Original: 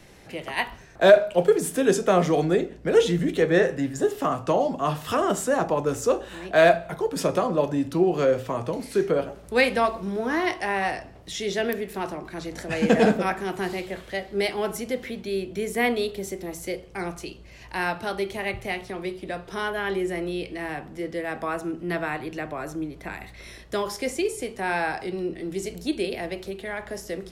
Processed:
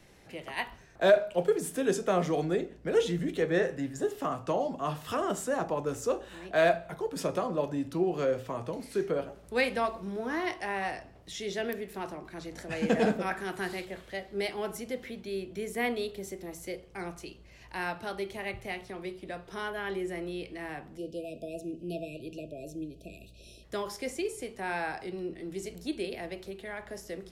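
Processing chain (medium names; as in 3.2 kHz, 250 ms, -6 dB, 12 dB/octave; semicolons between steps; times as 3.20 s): 13.31–13.85 s: fifteen-band graphic EQ 1.6 kHz +6 dB, 4 kHz +4 dB, 10 kHz +6 dB; 20.97–23.64 s: spectral selection erased 700–2400 Hz; trim -7.5 dB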